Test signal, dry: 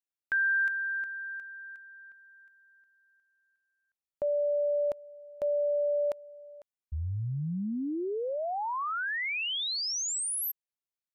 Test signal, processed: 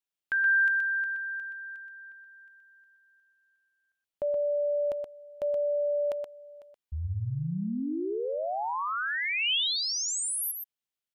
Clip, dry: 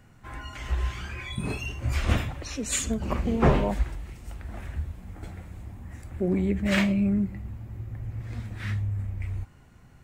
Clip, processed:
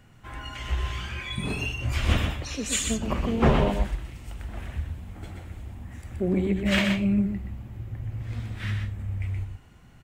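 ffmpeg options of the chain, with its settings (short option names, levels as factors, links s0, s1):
-filter_complex "[0:a]equalizer=f=3100:t=o:w=0.54:g=5.5,aeval=exprs='clip(val(0),-1,0.2)':c=same,asplit=2[s0][s1];[s1]aecho=0:1:124:0.531[s2];[s0][s2]amix=inputs=2:normalize=0"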